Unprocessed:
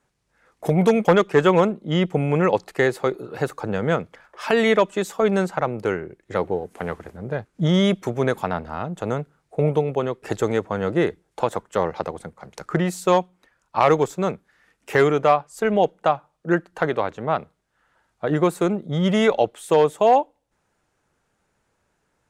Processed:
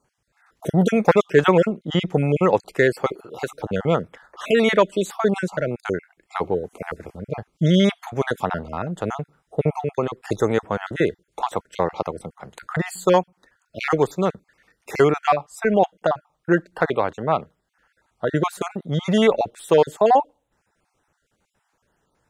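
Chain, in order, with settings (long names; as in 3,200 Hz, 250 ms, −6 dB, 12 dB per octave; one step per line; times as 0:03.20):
time-frequency cells dropped at random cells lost 32%
0:03.12–0:03.55: low-shelf EQ 320 Hz −9.5 dB
level +2 dB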